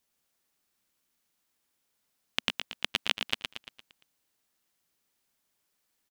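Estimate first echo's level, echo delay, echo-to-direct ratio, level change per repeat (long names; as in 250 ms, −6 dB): −6.0 dB, 115 ms, −5.0 dB, −6.0 dB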